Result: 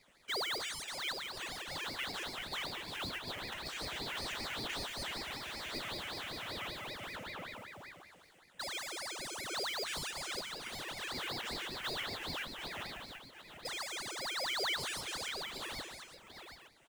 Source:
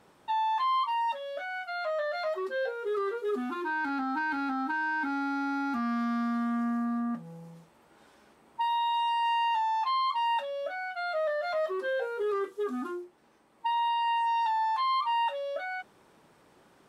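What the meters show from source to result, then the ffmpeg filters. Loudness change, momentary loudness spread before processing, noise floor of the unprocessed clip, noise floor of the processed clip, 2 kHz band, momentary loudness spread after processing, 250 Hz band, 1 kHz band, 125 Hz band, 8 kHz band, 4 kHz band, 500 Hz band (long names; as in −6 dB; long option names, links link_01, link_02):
−9.0 dB, 8 LU, −62 dBFS, −62 dBFS, −5.5 dB, 11 LU, −17.5 dB, −17.5 dB, +3.0 dB, can't be measured, +3.5 dB, −13.5 dB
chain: -filter_complex "[0:a]aeval=exprs='0.0211*(abs(mod(val(0)/0.0211+3,4)-2)-1)':channel_layout=same,firequalizer=gain_entry='entry(170,0);entry(500,-22);entry(900,-27);entry(1300,-8);entry(2400,7);entry(3900,-16);entry(6200,-4)':delay=0.05:min_phase=1,aresample=22050,aresample=44100,highshelf=frequency=3500:gain=5.5,bandreject=frequency=89.46:width_type=h:width=4,bandreject=frequency=178.92:width_type=h:width=4,bandreject=frequency=268.38:width_type=h:width=4,bandreject=frequency=357.84:width_type=h:width=4,bandreject=frequency=447.3:width_type=h:width=4,bandreject=frequency=536.76:width_type=h:width=4,bandreject=frequency=626.22:width_type=h:width=4,bandreject=frequency=715.68:width_type=h:width=4,bandreject=frequency=805.14:width_type=h:width=4,bandreject=frequency=894.6:width_type=h:width=4,bandreject=frequency=984.06:width_type=h:width=4,bandreject=frequency=1073.52:width_type=h:width=4,bandreject=frequency=1162.98:width_type=h:width=4,bandreject=frequency=1252.44:width_type=h:width=4,bandreject=frequency=1341.9:width_type=h:width=4,bandreject=frequency=1431.36:width_type=h:width=4,bandreject=frequency=1520.82:width_type=h:width=4,bandreject=frequency=1610.28:width_type=h:width=4,bandreject=frequency=1699.74:width_type=h:width=4,bandreject=frequency=1789.2:width_type=h:width=4,bandreject=frequency=1878.66:width_type=h:width=4,bandreject=frequency=1968.12:width_type=h:width=4,bandreject=frequency=2057.58:width_type=h:width=4,bandreject=frequency=2147.04:width_type=h:width=4,bandreject=frequency=2236.5:width_type=h:width=4,bandreject=frequency=2325.96:width_type=h:width=4,bandreject=frequency=2415.42:width_type=h:width=4,bandreject=frequency=2504.88:width_type=h:width=4,bandreject=frequency=2594.34:width_type=h:width=4,acrusher=bits=3:mode=log:mix=0:aa=0.000001,asplit=2[link_01][link_02];[link_02]aecho=0:1:146|704|738|861:0.422|0.15|0.355|0.211[link_03];[link_01][link_03]amix=inputs=2:normalize=0,aeval=exprs='val(0)*sin(2*PI*1300*n/s+1300*0.75/5.2*sin(2*PI*5.2*n/s))':channel_layout=same,volume=1dB"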